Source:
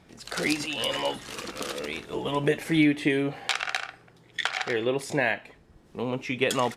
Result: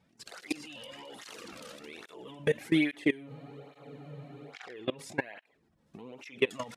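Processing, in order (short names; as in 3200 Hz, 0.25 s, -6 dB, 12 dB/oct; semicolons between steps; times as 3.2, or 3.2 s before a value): level quantiser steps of 23 dB; spectral freeze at 3.3, 1.24 s; tape flanging out of phase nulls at 1.2 Hz, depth 3 ms; gain +2 dB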